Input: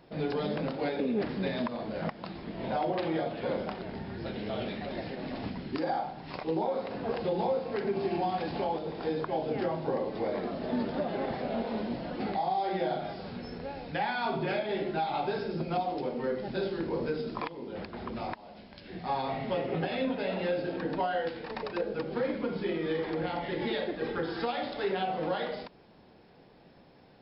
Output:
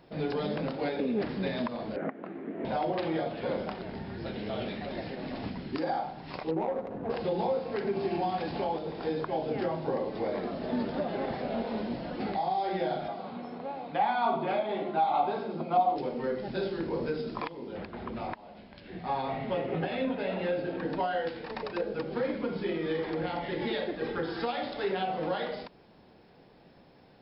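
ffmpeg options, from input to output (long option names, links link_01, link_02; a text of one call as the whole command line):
ffmpeg -i in.wav -filter_complex "[0:a]asettb=1/sr,asplit=3[link_01][link_02][link_03];[link_01]atrim=end=1.964[link_04];[link_02]atrim=start=1.96:end=2.65,asetpts=PTS-STARTPTS,afade=type=in:duration=0.004:curve=qsin,afade=type=out:start_time=0.686:duration=0.004:curve=qsin,highpass=240,equalizer=frequency=270:width_type=q:width=4:gain=9,equalizer=frequency=400:width_type=q:width=4:gain=7,equalizer=frequency=940:width_type=q:width=4:gain=-7,lowpass=frequency=2100:width=0.5412,lowpass=frequency=2100:width=1.3066[link_05];[link_03]atrim=start=2.646[link_06];[link_04][link_05]acrossfade=duration=0.004:curve1=hsin:curve2=qsin[link_07];[link_07][link_06]acrossfade=duration=0.004:curve1=qsin:curve2=hsin,asettb=1/sr,asplit=3[link_08][link_09][link_10];[link_08]atrim=end=6.514[link_11];[link_09]atrim=start=6.51:end=7.1,asetpts=PTS-STARTPTS,afade=type=in:duration=0.004:curve=qsin,afade=type=out:start_time=0.586:duration=0.004:curve=qsin,adynamicsmooth=sensitivity=1.5:basefreq=800[link_12];[link_10]atrim=start=7.096[link_13];[link_11][link_12]acrossfade=duration=0.004:curve1=hsin:curve2=qsin[link_14];[link_14][link_13]acrossfade=duration=0.004:curve1=qsin:curve2=hsin,asettb=1/sr,asplit=3[link_15][link_16][link_17];[link_15]atrim=end=13.084[link_18];[link_16]atrim=start=13.08:end=15.96,asetpts=PTS-STARTPTS,afade=type=in:duration=0.004:curve=qsin,afade=type=out:start_time=2.876:duration=0.004:curve=qsin,highpass=210,equalizer=frequency=230:width_type=q:width=4:gain=4,equalizer=frequency=400:width_type=q:width=4:gain=-3,equalizer=frequency=730:width_type=q:width=4:gain=7,equalizer=frequency=1100:width_type=q:width=4:gain=8,equalizer=frequency=1700:width_type=q:width=4:gain=-7,equalizer=frequency=2700:width_type=q:width=4:gain=-4,lowpass=frequency=3700:width=0.5412,lowpass=frequency=3700:width=1.3066[link_19];[link_17]atrim=start=15.956[link_20];[link_18][link_19]acrossfade=duration=0.004:curve1=hsin:curve2=qsin[link_21];[link_21][link_20]acrossfade=duration=0.004:curve1=qsin:curve2=hsin,asettb=1/sr,asplit=3[link_22][link_23][link_24];[link_22]atrim=end=17.774[link_25];[link_23]atrim=start=17.77:end=20.83,asetpts=PTS-STARTPTS,afade=type=in:duration=0.004:curve=qsin,afade=type=out:start_time=3.056:duration=0.004:curve=qsin,lowpass=3700[link_26];[link_24]atrim=start=20.826[link_27];[link_25][link_26]acrossfade=duration=0.004:curve1=hsin:curve2=qsin[link_28];[link_28][link_27]acrossfade=duration=0.004:curve1=qsin:curve2=hsin" out.wav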